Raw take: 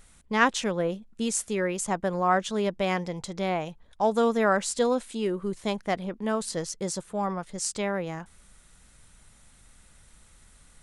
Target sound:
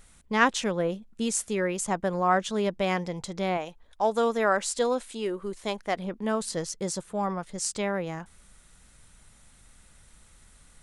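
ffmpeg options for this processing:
ffmpeg -i in.wav -filter_complex "[0:a]asettb=1/sr,asplit=3[link_01][link_02][link_03];[link_01]atrim=end=3.574[link_04];[link_02]atrim=start=3.57:end=5.98,asetpts=PTS-STARTPTS,afade=type=in:duration=0.004:curve=qsin,afade=type=out:start_time=2.406:duration=0.004:curve=qsin,equalizer=frequency=130:width=0.96:gain=-11.5[link_05];[link_03]atrim=start=5.976[link_06];[link_04][link_05]acrossfade=duration=0.004:curve1=hsin:curve2=qsin[link_07];[link_07][link_06]acrossfade=duration=0.004:curve1=qsin:curve2=hsin" out.wav

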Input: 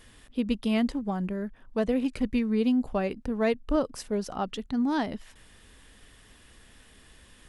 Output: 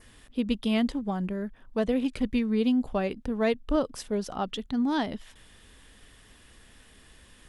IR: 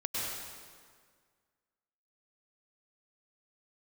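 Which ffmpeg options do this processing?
-af "adynamicequalizer=threshold=0.00141:dfrequency=3400:dqfactor=4.5:tfrequency=3400:tqfactor=4.5:attack=5:release=100:ratio=0.375:range=3:mode=boostabove:tftype=bell"

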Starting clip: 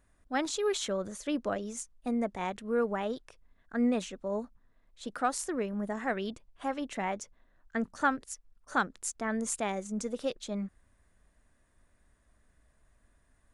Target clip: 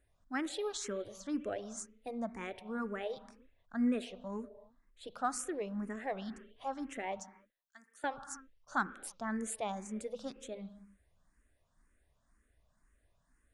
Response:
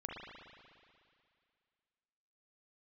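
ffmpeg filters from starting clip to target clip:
-filter_complex "[0:a]asettb=1/sr,asplit=3[link_01][link_02][link_03];[link_01]atrim=end=7.204[link_04];[link_02]atrim=start=7.2:end=8.04,asetpts=PTS-STARTPTS,afade=type=in:duration=0.004:curve=qsin,afade=type=out:start_time=0.836:duration=0.004:curve=qsin,aderivative[link_05];[link_03]atrim=start=8.036[link_06];[link_04][link_05]acrossfade=duration=0.004:curve1=hsin:curve2=qsin[link_07];[link_07][link_06]acrossfade=duration=0.004:curve1=qsin:curve2=hsin,asplit=2[link_08][link_09];[1:a]atrim=start_sample=2205,afade=type=out:start_time=0.37:duration=0.01,atrim=end_sample=16758[link_10];[link_09][link_10]afir=irnorm=-1:irlink=0,volume=-10.5dB[link_11];[link_08][link_11]amix=inputs=2:normalize=0,asplit=2[link_12][link_13];[link_13]afreqshift=2[link_14];[link_12][link_14]amix=inputs=2:normalize=1,volume=-4.5dB"

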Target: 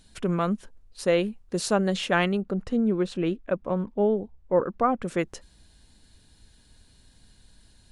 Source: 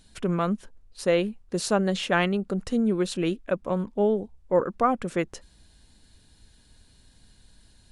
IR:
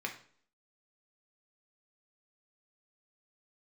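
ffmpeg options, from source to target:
-filter_complex "[0:a]asettb=1/sr,asplit=3[link_01][link_02][link_03];[link_01]atrim=end=2.424[link_04];[link_02]atrim=start=2.42:end=5.03,asetpts=PTS-STARTPTS,afade=type=in:duration=0.004:curve=qsin,afade=type=out:start_time=2.606:duration=0.004:curve=qsin,aemphasis=mode=reproduction:type=75kf[link_05];[link_03]atrim=start=5.026[link_06];[link_04][link_05]acrossfade=duration=0.004:curve1=hsin:curve2=qsin[link_07];[link_07][link_06]acrossfade=duration=0.004:curve1=qsin:curve2=hsin"

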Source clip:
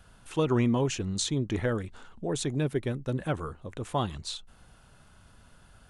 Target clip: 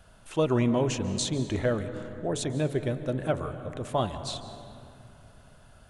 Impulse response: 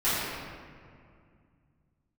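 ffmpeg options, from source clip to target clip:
-filter_complex "[0:a]equalizer=frequency=620:width=4.1:gain=8.5,bandreject=frequency=143.2:width_type=h:width=4,bandreject=frequency=286.4:width_type=h:width=4,bandreject=frequency=429.6:width_type=h:width=4,bandreject=frequency=572.8:width_type=h:width=4,bandreject=frequency=716:width_type=h:width=4,bandreject=frequency=859.2:width_type=h:width=4,bandreject=frequency=1002.4:width_type=h:width=4,bandreject=frequency=1145.6:width_type=h:width=4,bandreject=frequency=1288.8:width_type=h:width=4,bandreject=frequency=1432:width_type=h:width=4,bandreject=frequency=1575.2:width_type=h:width=4,bandreject=frequency=1718.4:width_type=h:width=4,bandreject=frequency=1861.6:width_type=h:width=4,bandreject=frequency=2004.8:width_type=h:width=4,bandreject=frequency=2148:width_type=h:width=4,bandreject=frequency=2291.2:width_type=h:width=4,asplit=2[link_01][link_02];[1:a]atrim=start_sample=2205,asetrate=33075,aresample=44100,adelay=138[link_03];[link_02][link_03]afir=irnorm=-1:irlink=0,volume=-26.5dB[link_04];[link_01][link_04]amix=inputs=2:normalize=0"

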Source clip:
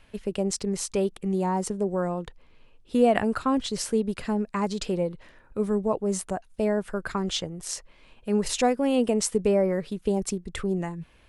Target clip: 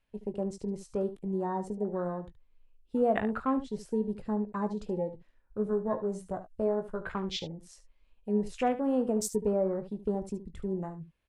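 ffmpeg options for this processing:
ffmpeg -i in.wav -filter_complex "[0:a]afwtdn=0.02,asettb=1/sr,asplit=3[link_01][link_02][link_03];[link_01]atrim=end=5.644[link_04];[link_02]atrim=start=5.64:end=7.14,asetpts=PTS-STARTPTS,afade=type=in:duration=0.004:curve=qsin,afade=type=out:start_time=1.496:duration=0.004:curve=qsin,asplit=2[link_05][link_06];[link_06]adelay=17,volume=-7dB[link_07];[link_05][link_07]amix=inputs=2:normalize=0,atrim=end_sample=66150[link_08];[link_03]atrim=start=7.136[link_09];[link_04][link_08]acrossfade=duration=0.004:curve1=hsin:curve2=qsin[link_10];[link_10][link_09]acrossfade=duration=0.004:curve1=qsin:curve2=hsin,aecho=1:1:19|73:0.282|0.224,volume=-6dB" out.wav

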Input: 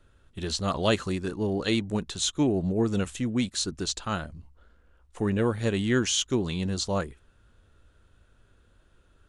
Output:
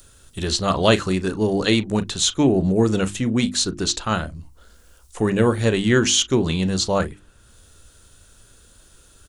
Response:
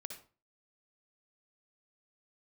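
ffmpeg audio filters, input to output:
-filter_complex "[0:a]bandreject=frequency=50:width_type=h:width=6,bandreject=frequency=100:width_type=h:width=6,bandreject=frequency=150:width_type=h:width=6,bandreject=frequency=200:width_type=h:width=6,bandreject=frequency=250:width_type=h:width=6,bandreject=frequency=300:width_type=h:width=6,bandreject=frequency=350:width_type=h:width=6,acrossover=split=5100[link_01][link_02];[link_01]asplit=2[link_03][link_04];[link_04]adelay=37,volume=-14dB[link_05];[link_03][link_05]amix=inputs=2:normalize=0[link_06];[link_02]acompressor=mode=upward:threshold=-46dB:ratio=2.5[link_07];[link_06][link_07]amix=inputs=2:normalize=0,volume=8dB"

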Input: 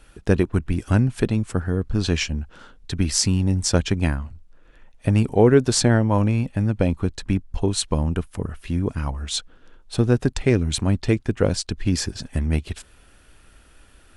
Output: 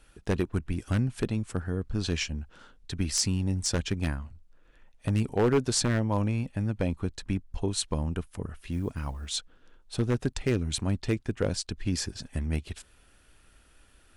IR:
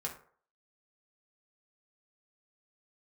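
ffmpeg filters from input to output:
-filter_complex "[0:a]highshelf=frequency=2100:gain=2.5,aeval=exprs='0.398*(abs(mod(val(0)/0.398+3,4)-2)-1)':channel_layout=same,asettb=1/sr,asplit=3[link_01][link_02][link_03];[link_01]atrim=end=8.724[link_04];[link_02]atrim=start=8.72:end=9.37,asetpts=PTS-STARTPTS,afade=type=in:duration=0.004:curve=qsin,afade=type=out:start_time=0.646:duration=0.004:curve=qsin,acrusher=bits=9:mode=log:mix=0:aa=0.000001[link_05];[link_03]atrim=start=9.366[link_06];[link_04][link_05]acrossfade=duration=0.004:curve1=hsin:curve2=qsin[link_07];[link_07][link_06]acrossfade=duration=0.004:curve1=qsin:curve2=hsin,volume=-8dB"

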